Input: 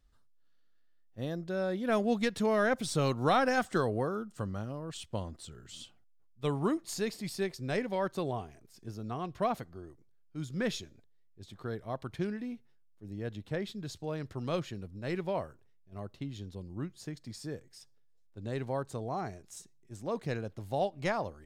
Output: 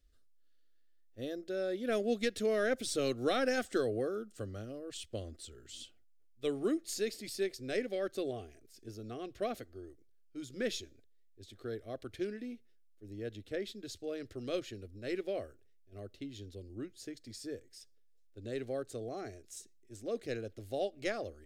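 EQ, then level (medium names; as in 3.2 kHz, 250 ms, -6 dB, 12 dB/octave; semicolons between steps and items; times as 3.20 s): static phaser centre 390 Hz, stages 4; 0.0 dB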